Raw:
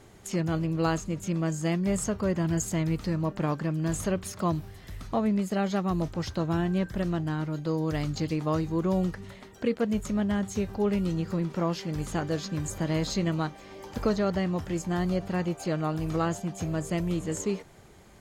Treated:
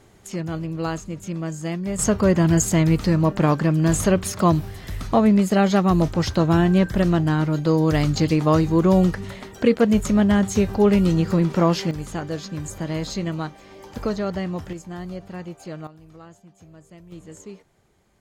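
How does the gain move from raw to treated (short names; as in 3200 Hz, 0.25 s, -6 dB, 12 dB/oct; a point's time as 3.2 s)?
0 dB
from 1.99 s +10 dB
from 11.91 s +1 dB
from 14.73 s -5.5 dB
from 15.87 s -17 dB
from 17.12 s -10 dB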